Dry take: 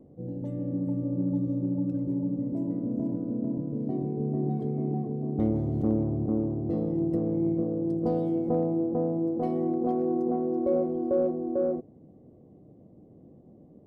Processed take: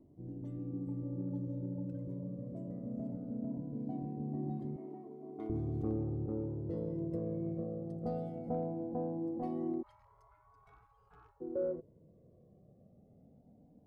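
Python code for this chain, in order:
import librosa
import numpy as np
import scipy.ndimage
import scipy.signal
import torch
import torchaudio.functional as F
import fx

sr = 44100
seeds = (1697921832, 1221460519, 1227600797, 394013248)

y = fx.highpass(x, sr, hz=410.0, slope=12, at=(4.76, 5.5))
y = fx.spec_gate(y, sr, threshold_db=-30, keep='weak', at=(9.81, 11.4), fade=0.02)
y = fx.comb_cascade(y, sr, direction='rising', hz=0.2)
y = F.gain(torch.from_numpy(y), -4.0).numpy()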